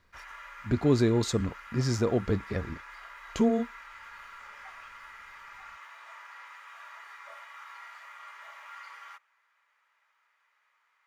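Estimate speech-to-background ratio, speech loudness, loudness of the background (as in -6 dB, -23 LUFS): 18.0 dB, -28.0 LUFS, -46.0 LUFS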